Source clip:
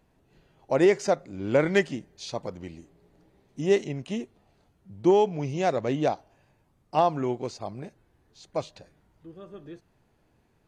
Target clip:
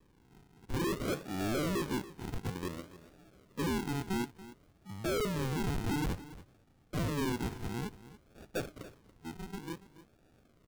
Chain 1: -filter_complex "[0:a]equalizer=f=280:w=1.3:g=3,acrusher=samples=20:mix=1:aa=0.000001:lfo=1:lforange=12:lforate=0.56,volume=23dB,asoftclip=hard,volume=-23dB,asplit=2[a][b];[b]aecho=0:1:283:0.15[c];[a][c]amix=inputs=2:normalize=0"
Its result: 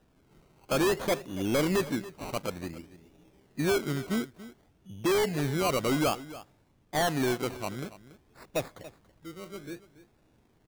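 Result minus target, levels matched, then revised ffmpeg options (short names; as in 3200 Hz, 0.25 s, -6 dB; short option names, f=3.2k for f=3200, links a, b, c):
decimation with a swept rate: distortion -25 dB; overloaded stage: distortion -4 dB
-filter_complex "[0:a]equalizer=f=280:w=1.3:g=3,acrusher=samples=60:mix=1:aa=0.000001:lfo=1:lforange=36:lforate=0.56,volume=31dB,asoftclip=hard,volume=-31dB,asplit=2[a][b];[b]aecho=0:1:283:0.15[c];[a][c]amix=inputs=2:normalize=0"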